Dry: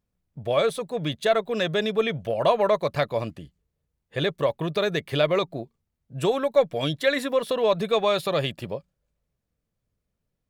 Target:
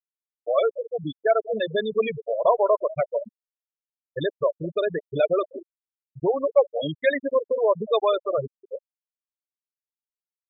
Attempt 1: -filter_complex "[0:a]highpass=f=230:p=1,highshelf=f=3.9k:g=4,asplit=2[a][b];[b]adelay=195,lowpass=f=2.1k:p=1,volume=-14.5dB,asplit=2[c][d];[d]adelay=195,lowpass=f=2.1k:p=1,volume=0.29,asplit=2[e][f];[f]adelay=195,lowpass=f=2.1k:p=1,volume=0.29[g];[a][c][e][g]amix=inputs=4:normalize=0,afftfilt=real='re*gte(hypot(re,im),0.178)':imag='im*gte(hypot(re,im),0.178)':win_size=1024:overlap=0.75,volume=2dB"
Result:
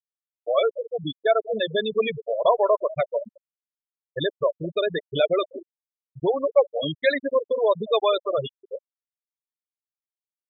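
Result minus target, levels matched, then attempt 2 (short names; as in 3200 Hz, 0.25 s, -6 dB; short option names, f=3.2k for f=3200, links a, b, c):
4000 Hz band +6.0 dB
-filter_complex "[0:a]highpass=f=230:p=1,highshelf=f=3.9k:g=-2,asplit=2[a][b];[b]adelay=195,lowpass=f=2.1k:p=1,volume=-14.5dB,asplit=2[c][d];[d]adelay=195,lowpass=f=2.1k:p=1,volume=0.29,asplit=2[e][f];[f]adelay=195,lowpass=f=2.1k:p=1,volume=0.29[g];[a][c][e][g]amix=inputs=4:normalize=0,afftfilt=real='re*gte(hypot(re,im),0.178)':imag='im*gte(hypot(re,im),0.178)':win_size=1024:overlap=0.75,volume=2dB"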